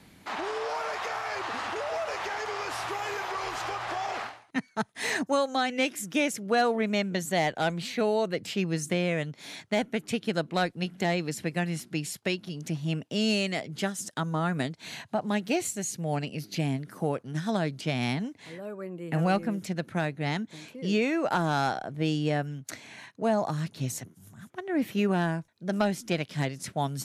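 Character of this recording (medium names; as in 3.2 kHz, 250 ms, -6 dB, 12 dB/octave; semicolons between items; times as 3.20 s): noise floor -58 dBFS; spectral tilt -5.0 dB/octave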